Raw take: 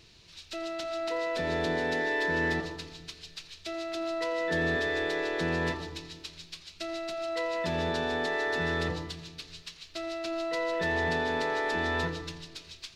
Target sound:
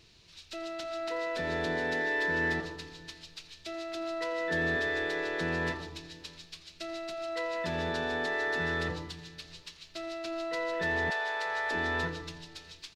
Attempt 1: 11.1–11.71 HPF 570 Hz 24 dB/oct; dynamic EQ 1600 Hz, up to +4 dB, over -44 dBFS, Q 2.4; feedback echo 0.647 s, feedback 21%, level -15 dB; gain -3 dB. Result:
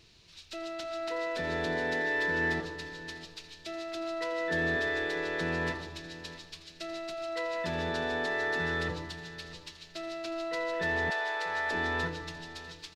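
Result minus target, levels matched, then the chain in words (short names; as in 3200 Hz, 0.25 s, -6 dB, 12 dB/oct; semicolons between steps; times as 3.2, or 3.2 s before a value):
echo-to-direct +10 dB
11.1–11.71 HPF 570 Hz 24 dB/oct; dynamic EQ 1600 Hz, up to +4 dB, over -44 dBFS, Q 2.4; feedback echo 0.647 s, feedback 21%, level -25 dB; gain -3 dB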